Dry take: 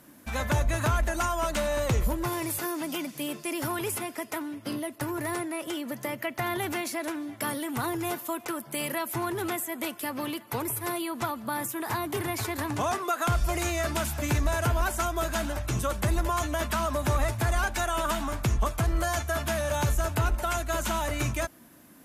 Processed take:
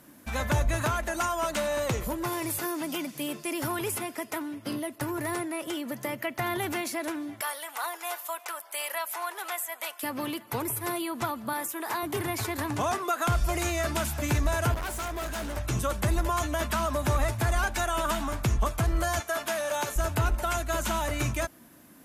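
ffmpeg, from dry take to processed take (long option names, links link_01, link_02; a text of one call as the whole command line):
ffmpeg -i in.wav -filter_complex "[0:a]asettb=1/sr,asplit=3[link_01][link_02][link_03];[link_01]atrim=end=0.824[link_04];[link_02]atrim=start=0.82:end=2.45,asetpts=PTS-STARTPTS,afade=type=in:duration=0.004:curve=qsin,afade=type=out:start_time=1.626:duration=0.004:curve=qsin,highpass=frequency=160:poles=1[link_05];[link_03]atrim=start=2.446[link_06];[link_04][link_05]acrossfade=duration=0.004:curve1=hsin:curve2=qsin[link_07];[link_07][link_06]acrossfade=duration=0.004:curve1=qsin:curve2=hsin,asettb=1/sr,asplit=3[link_08][link_09][link_10];[link_08]atrim=end=7.414[link_11];[link_09]atrim=start=7.41:end=10.03,asetpts=PTS-STARTPTS,afade=type=in:duration=0.004:curve=qsin,afade=type=out:start_time=2.616:duration=0.004:curve=qsin,highpass=frequency=630:width=0.5412,highpass=frequency=630:width=1.3066[link_12];[link_10]atrim=start=10.026[link_13];[link_11][link_12]acrossfade=duration=0.004:curve1=hsin:curve2=qsin[link_14];[link_14][link_13]acrossfade=duration=0.004:curve1=qsin:curve2=hsin,asettb=1/sr,asplit=3[link_15][link_16][link_17];[link_15]atrim=end=11.534[link_18];[link_16]atrim=start=11.53:end=12.03,asetpts=PTS-STARTPTS,afade=type=in:duration=0.004:curve=qsin,afade=type=out:start_time=0.496:duration=0.004:curve=qsin,highpass=340[link_19];[link_17]atrim=start=12.026[link_20];[link_18][link_19]acrossfade=duration=0.004:curve1=hsin:curve2=qsin[link_21];[link_21][link_20]acrossfade=duration=0.004:curve1=qsin:curve2=hsin,asettb=1/sr,asplit=3[link_22][link_23][link_24];[link_22]atrim=end=14.744[link_25];[link_23]atrim=start=14.74:end=15.57,asetpts=PTS-STARTPTS,afade=type=in:duration=0.004:curve=qsin,afade=type=out:start_time=0.826:duration=0.004:curve=qsin,volume=31dB,asoftclip=hard,volume=-31dB[link_26];[link_24]atrim=start=15.566[link_27];[link_25][link_26]acrossfade=duration=0.004:curve1=hsin:curve2=qsin[link_28];[link_28][link_27]acrossfade=duration=0.004:curve1=qsin:curve2=hsin,asettb=1/sr,asplit=3[link_29][link_30][link_31];[link_29]atrim=end=19.204[link_32];[link_30]atrim=start=19.2:end=19.96,asetpts=PTS-STARTPTS,afade=type=in:duration=0.004:curve=qsin,afade=type=out:start_time=0.756:duration=0.004:curve=qsin,highpass=350[link_33];[link_31]atrim=start=19.956[link_34];[link_32][link_33]acrossfade=duration=0.004:curve1=hsin:curve2=qsin[link_35];[link_35][link_34]acrossfade=duration=0.004:curve1=qsin:curve2=hsin" out.wav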